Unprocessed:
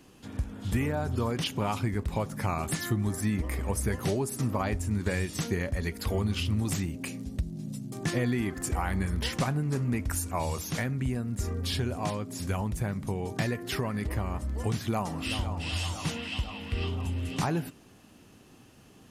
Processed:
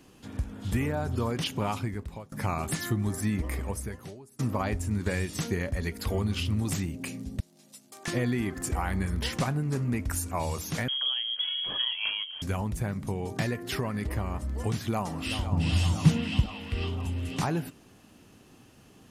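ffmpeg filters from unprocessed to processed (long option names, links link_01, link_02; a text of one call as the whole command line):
ffmpeg -i in.wav -filter_complex "[0:a]asettb=1/sr,asplit=3[link_01][link_02][link_03];[link_01]atrim=end=7.404[link_04];[link_02]atrim=start=7.4:end=8.08,asetpts=PTS-STARTPTS,afade=type=in:duration=0.004:curve=qsin,afade=type=out:start_time=0.676:duration=0.004:curve=qsin,highpass=790[link_05];[link_03]atrim=start=8.076[link_06];[link_04][link_05]acrossfade=duration=0.004:curve1=hsin:curve2=qsin[link_07];[link_07][link_06]acrossfade=duration=0.004:curve1=qsin:curve2=hsin,asettb=1/sr,asplit=3[link_08][link_09][link_10];[link_08]atrim=end=10.884[link_11];[link_09]atrim=start=10.88:end=12.42,asetpts=PTS-STARTPTS,afade=type=in:duration=0.004:curve=qsin,afade=type=out:start_time=1.536:duration=0.004:curve=qsin,lowpass=frequency=2900:width_type=q:width=0.5098,lowpass=frequency=2900:width_type=q:width=0.6013,lowpass=frequency=2900:width_type=q:width=0.9,lowpass=frequency=2900:width_type=q:width=2.563,afreqshift=-3400[link_12];[link_10]atrim=start=12.416[link_13];[link_11][link_12]acrossfade=duration=0.004:curve1=hsin:curve2=qsin[link_14];[link_14][link_13]acrossfade=duration=0.004:curve1=qsin:curve2=hsin,asettb=1/sr,asplit=3[link_15][link_16][link_17];[link_15]atrim=end=15.524[link_18];[link_16]atrim=start=15.52:end=16.46,asetpts=PTS-STARTPTS,afade=type=in:duration=0.004:curve=qsin,afade=type=out:start_time=0.936:duration=0.004:curve=qsin,equalizer=frequency=150:width=0.73:gain=14.5[link_19];[link_17]atrim=start=16.456[link_20];[link_18][link_19]acrossfade=duration=0.004:curve1=hsin:curve2=qsin[link_21];[link_21][link_20]acrossfade=duration=0.004:curve1=qsin:curve2=hsin,asplit=3[link_22][link_23][link_24];[link_22]atrim=end=2.32,asetpts=PTS-STARTPTS,afade=type=out:start_time=1.67:duration=0.65:silence=0.0749894[link_25];[link_23]atrim=start=2.32:end=4.39,asetpts=PTS-STARTPTS,afade=type=in:duration=0.004:curve=hsin:silence=0.0749894,afade=type=out:start_time=1.24:duration=0.83:curve=qua:silence=0.0707946[link_26];[link_24]atrim=start=4.39,asetpts=PTS-STARTPTS,afade=type=in:duration=0.004:curve=hsin:silence=0.0707946[link_27];[link_25][link_26][link_27]concat=n=3:v=0:a=1" out.wav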